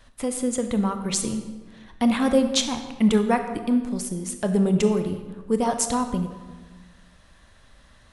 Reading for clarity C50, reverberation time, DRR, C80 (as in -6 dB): 8.5 dB, 1.4 s, 7.0 dB, 10.0 dB